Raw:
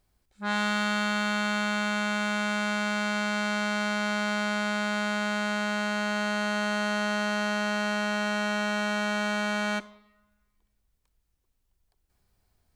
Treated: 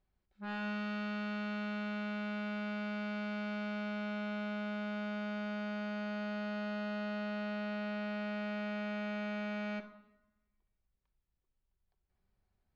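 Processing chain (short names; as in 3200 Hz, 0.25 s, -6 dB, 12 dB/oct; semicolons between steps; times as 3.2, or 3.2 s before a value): one-sided clip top -25.5 dBFS; air absorption 230 m; shoebox room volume 2500 m³, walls furnished, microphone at 1.1 m; gain -8.5 dB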